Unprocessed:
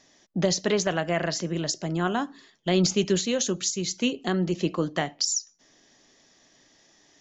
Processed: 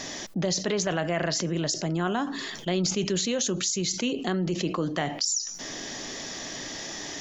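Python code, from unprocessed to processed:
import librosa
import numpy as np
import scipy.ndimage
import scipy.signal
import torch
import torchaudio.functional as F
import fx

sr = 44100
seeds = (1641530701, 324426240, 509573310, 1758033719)

y = fx.env_flatten(x, sr, amount_pct=70)
y = y * 10.0 ** (-5.5 / 20.0)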